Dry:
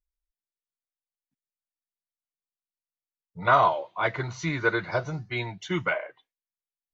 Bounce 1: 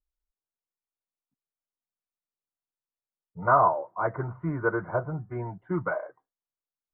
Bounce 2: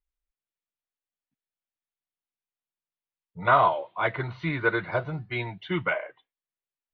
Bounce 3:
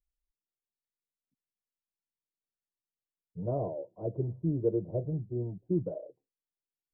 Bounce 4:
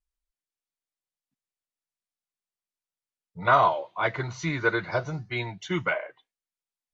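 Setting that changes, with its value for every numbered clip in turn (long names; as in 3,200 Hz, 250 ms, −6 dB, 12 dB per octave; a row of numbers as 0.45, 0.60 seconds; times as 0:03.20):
Butterworth low-pass, frequency: 1,400, 3,700, 530, 11,000 Hertz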